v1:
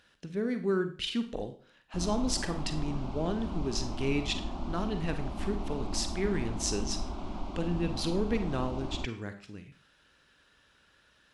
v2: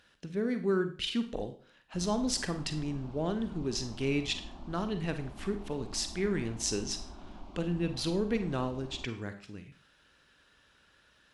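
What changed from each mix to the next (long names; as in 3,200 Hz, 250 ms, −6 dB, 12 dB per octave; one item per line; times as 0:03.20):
background −10.0 dB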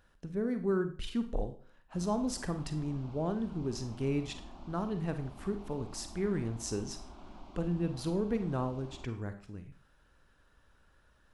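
speech: remove meter weighting curve D
master: add low-shelf EQ 440 Hz −4 dB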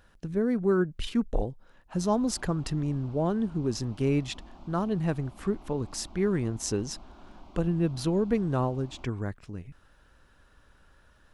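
speech +8.5 dB
reverb: off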